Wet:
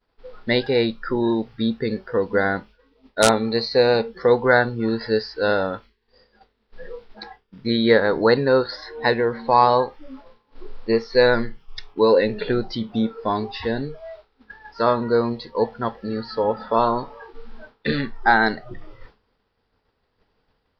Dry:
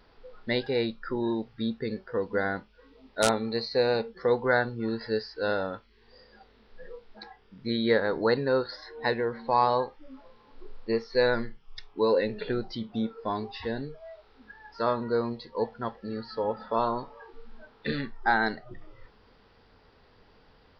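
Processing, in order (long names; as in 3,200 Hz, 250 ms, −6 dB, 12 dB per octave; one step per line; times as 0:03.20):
downward expander −46 dBFS
level +8 dB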